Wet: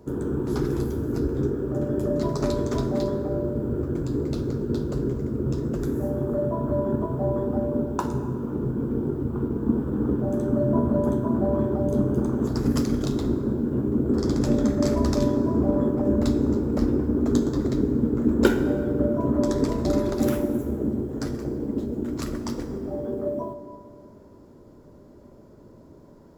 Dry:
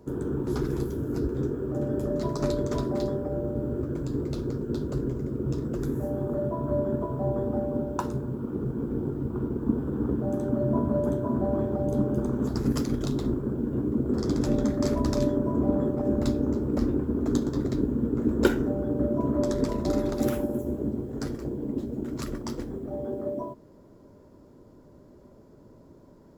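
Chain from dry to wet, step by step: plate-style reverb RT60 2.4 s, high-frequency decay 0.55×, DRR 8.5 dB; trim +2.5 dB

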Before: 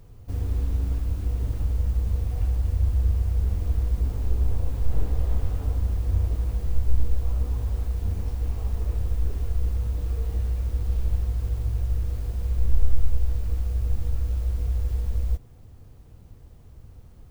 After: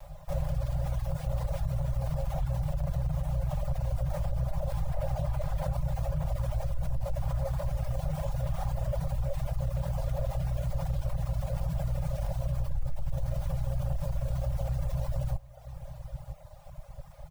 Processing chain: comb filter that takes the minimum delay 4.9 ms; peaking EQ 430 Hz +12 dB 0.76 oct; formant shift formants +4 st; Chebyshev band-stop 160–540 Hz, order 5; on a send: delay 962 ms -17 dB; on the sum: peak limiter -20 dBFS, peak gain reduction 8.5 dB; reverb removal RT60 0.99 s; in parallel at -2 dB: compressor with a negative ratio -36 dBFS, ratio -1; on the sum: trim -1.5 dB

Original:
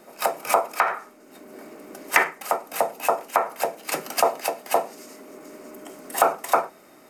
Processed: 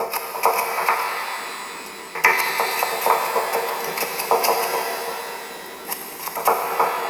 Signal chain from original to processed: slices played last to first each 86 ms, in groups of 4; in parallel at -6 dB: word length cut 6-bit, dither none; on the sum: rippled EQ curve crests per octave 0.83, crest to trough 10 dB; pitch-shifted reverb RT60 3.4 s, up +12 st, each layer -8 dB, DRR 1 dB; trim -3.5 dB

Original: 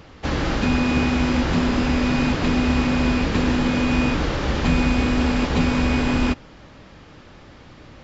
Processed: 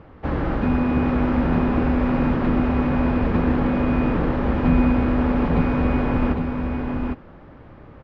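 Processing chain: low-pass 1.4 kHz 12 dB/octave; on a send: delay 805 ms -5 dB

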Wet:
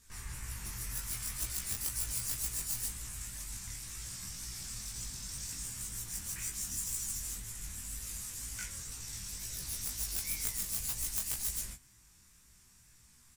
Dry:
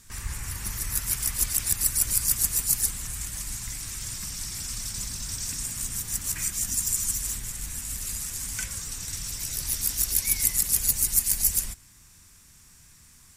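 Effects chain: self-modulated delay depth 0.052 ms; chorus 2 Hz, delay 18 ms, depth 7.8 ms; doubling 16 ms -5 dB; trim -6.5 dB

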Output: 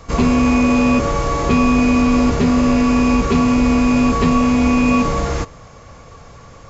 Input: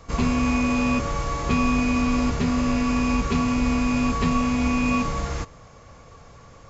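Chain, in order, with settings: dynamic bell 420 Hz, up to +6 dB, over -37 dBFS, Q 0.74; in parallel at -2.5 dB: peak limiter -17 dBFS, peak gain reduction 10 dB; on the sum: trim +2 dB

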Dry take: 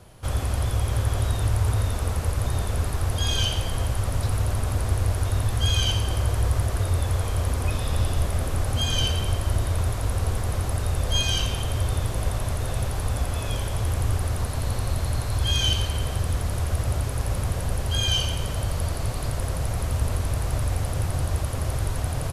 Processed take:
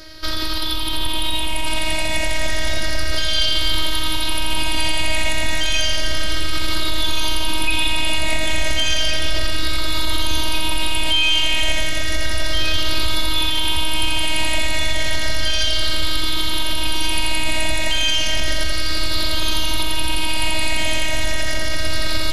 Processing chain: drifting ripple filter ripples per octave 0.57, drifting -0.32 Hz, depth 13 dB; high-order bell 3.1 kHz +12.5 dB; peak limiter -18 dBFS, peak gain reduction 15.5 dB; robot voice 316 Hz; on a send: echo whose repeats swap between lows and highs 715 ms, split 1.3 kHz, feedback 71%, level -3.5 dB; on the sum: trim +9 dB

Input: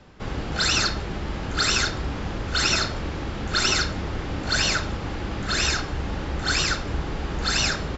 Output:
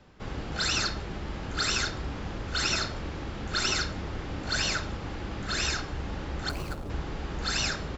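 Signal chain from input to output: 6.49–6.90 s: median filter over 25 samples; trim -6 dB

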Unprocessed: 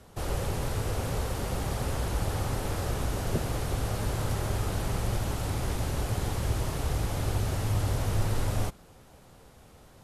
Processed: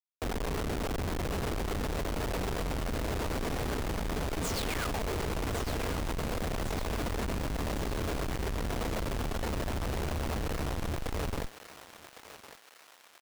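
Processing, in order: peaking EQ 860 Hz +5.5 dB 2.4 oct; comb 3.3 ms, depth 36%; tape speed -24%; painted sound fall, 4.42–5.16 s, 330–8800 Hz -32 dBFS; rotary cabinet horn 8 Hz; Schmitt trigger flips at -36 dBFS; on a send: thinning echo 1107 ms, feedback 60%, high-pass 960 Hz, level -9 dB; on the sum: trim -2.5 dB

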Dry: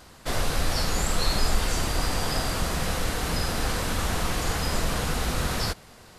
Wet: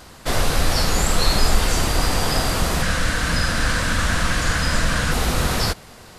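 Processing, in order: 2.82–5.12 s: graphic EQ with 31 bands 400 Hz -12 dB, 800 Hz -8 dB, 1.6 kHz +8 dB, 12.5 kHz -11 dB; trim +6.5 dB

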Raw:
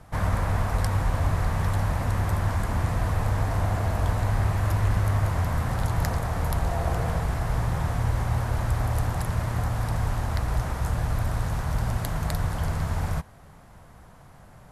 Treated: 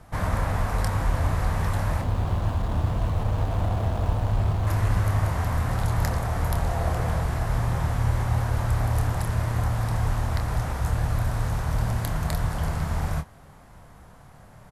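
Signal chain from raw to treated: 2.01–4.67 s: median filter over 25 samples; doubling 27 ms -8 dB

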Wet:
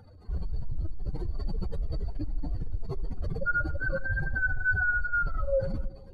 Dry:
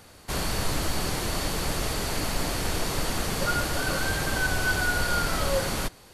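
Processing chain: spectral contrast enhancement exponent 3.1; filtered feedback delay 75 ms, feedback 83%, low-pass 1.2 kHz, level -19 dB

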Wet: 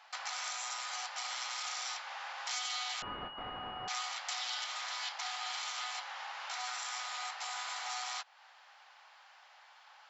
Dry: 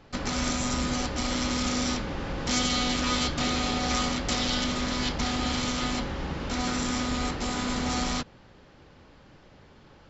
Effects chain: elliptic high-pass 750 Hz, stop band 60 dB; compression 2:1, threshold -44 dBFS, peak gain reduction 11 dB; 3.02–3.88 s: class-D stage that switches slowly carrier 2.9 kHz; trim +1 dB

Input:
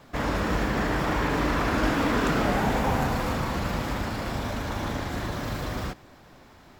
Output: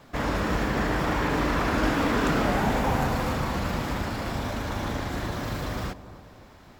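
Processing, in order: bucket-brigade echo 277 ms, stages 2048, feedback 49%, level -14.5 dB

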